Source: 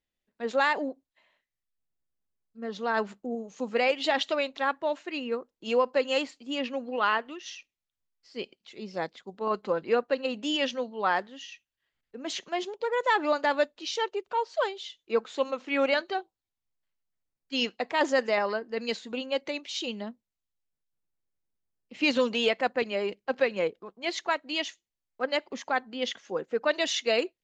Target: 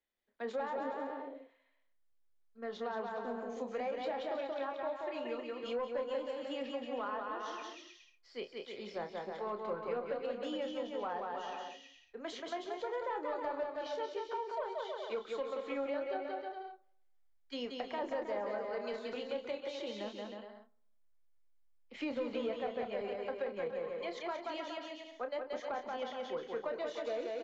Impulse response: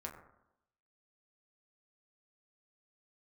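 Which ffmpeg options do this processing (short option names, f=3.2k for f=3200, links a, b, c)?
-filter_complex "[0:a]bandreject=f=2.7k:w=9.7,acrossover=split=160|1000[a][b][c];[c]acompressor=threshold=-41dB:ratio=6[d];[a][b][d]amix=inputs=3:normalize=0,asubboost=boost=6.5:cutoff=84,asoftclip=type=tanh:threshold=-20dB,bass=f=250:g=-11,treble=f=4k:g=-9,asplit=2[e][f];[f]adelay=29,volume=-8dB[g];[e][g]amix=inputs=2:normalize=0,aecho=1:1:180|315|416.2|492.2|549.1:0.631|0.398|0.251|0.158|0.1,asplit=2[h][i];[1:a]atrim=start_sample=2205[j];[i][j]afir=irnorm=-1:irlink=0,volume=-15dB[k];[h][k]amix=inputs=2:normalize=0,acrossover=split=230[l][m];[m]acompressor=threshold=-38dB:ratio=2.5[n];[l][n]amix=inputs=2:normalize=0,volume=-1.5dB"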